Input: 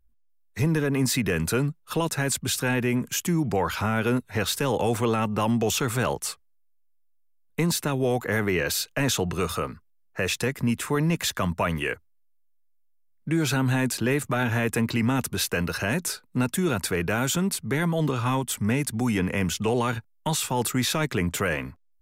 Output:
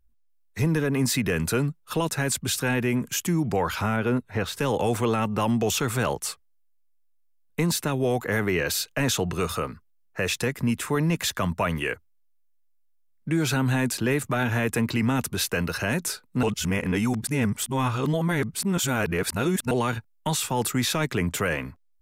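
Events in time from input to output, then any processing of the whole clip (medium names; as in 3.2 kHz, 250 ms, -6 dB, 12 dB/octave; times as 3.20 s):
3.96–4.59 s: treble shelf 3.3 kHz -10.5 dB
16.43–19.71 s: reverse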